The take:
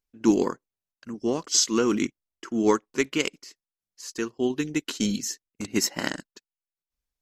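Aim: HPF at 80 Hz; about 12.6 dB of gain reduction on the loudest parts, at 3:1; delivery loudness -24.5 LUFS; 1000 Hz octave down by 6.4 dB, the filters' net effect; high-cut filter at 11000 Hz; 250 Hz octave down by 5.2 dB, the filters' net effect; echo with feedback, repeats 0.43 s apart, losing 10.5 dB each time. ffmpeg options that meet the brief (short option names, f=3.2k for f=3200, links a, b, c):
-af "highpass=80,lowpass=11k,equalizer=f=250:t=o:g=-6.5,equalizer=f=1k:t=o:g=-7.5,acompressor=threshold=-36dB:ratio=3,aecho=1:1:430|860|1290:0.299|0.0896|0.0269,volume=14dB"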